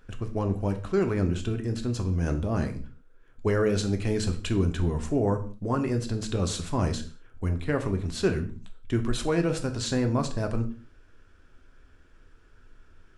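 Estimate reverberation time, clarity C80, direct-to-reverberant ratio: not exponential, 17.0 dB, 5.5 dB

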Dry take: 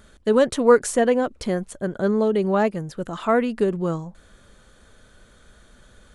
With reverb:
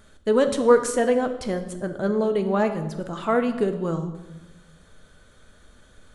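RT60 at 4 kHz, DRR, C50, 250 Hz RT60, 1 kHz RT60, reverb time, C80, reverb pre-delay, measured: 0.85 s, 7.0 dB, 11.0 dB, 1.5 s, 0.95 s, 1.0 s, 12.5 dB, 7 ms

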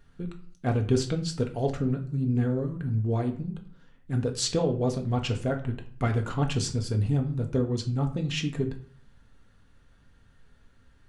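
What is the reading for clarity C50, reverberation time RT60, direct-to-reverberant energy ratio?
12.0 dB, 0.50 s, 3.0 dB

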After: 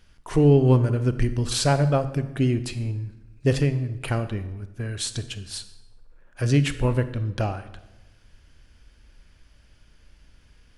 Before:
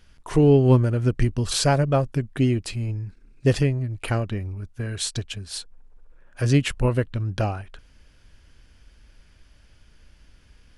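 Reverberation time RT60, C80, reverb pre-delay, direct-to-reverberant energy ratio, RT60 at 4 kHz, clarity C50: 1.0 s, 15.0 dB, 28 ms, 11.5 dB, 0.75 s, 13.0 dB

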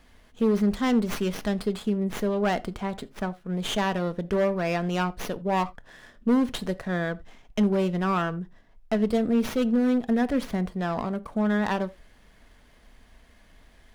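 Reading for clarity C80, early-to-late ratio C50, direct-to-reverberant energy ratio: 26.5 dB, 21.5 dB, 12.0 dB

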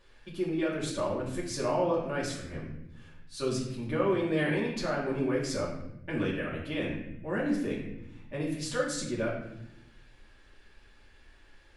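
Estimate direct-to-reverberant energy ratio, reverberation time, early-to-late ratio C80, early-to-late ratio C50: -6.0 dB, 0.85 s, 6.5 dB, 3.5 dB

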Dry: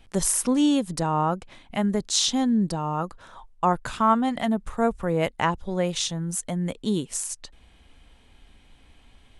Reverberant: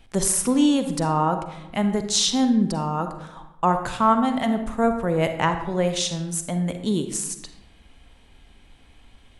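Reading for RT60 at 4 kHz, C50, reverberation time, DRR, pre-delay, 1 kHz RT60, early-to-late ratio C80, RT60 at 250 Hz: 0.55 s, 8.0 dB, 0.95 s, 7.5 dB, 38 ms, 0.90 s, 11.0 dB, 1.1 s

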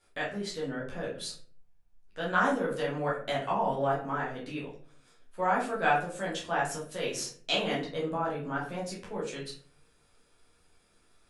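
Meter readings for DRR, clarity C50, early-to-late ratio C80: -6.0 dB, 6.5 dB, 11.5 dB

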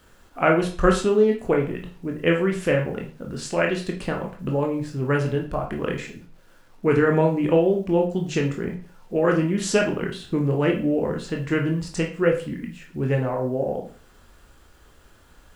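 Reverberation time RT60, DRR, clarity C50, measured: 0.40 s, 1.0 dB, 8.5 dB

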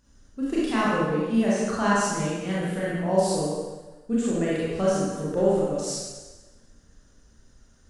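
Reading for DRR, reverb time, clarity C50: -8.0 dB, 1.2 s, -4.0 dB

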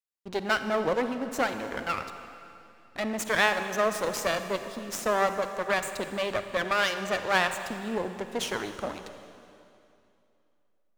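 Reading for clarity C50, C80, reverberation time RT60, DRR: 9.0 dB, 9.5 dB, 2.7 s, 8.5 dB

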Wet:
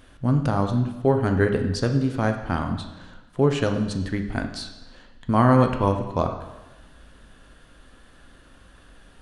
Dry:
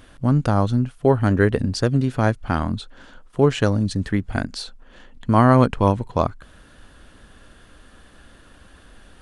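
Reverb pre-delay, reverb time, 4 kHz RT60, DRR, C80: 6 ms, 1.1 s, 1.0 s, 5.0 dB, 10.0 dB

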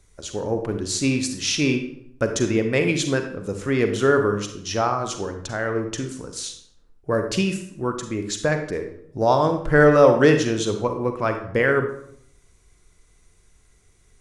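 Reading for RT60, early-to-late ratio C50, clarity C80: 0.65 s, 7.0 dB, 11.0 dB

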